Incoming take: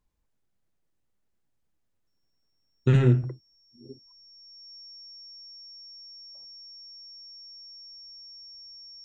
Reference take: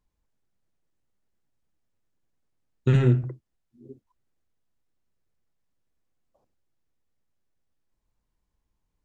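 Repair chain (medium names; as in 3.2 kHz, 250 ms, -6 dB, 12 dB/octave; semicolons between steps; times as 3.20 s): band-stop 5.5 kHz, Q 30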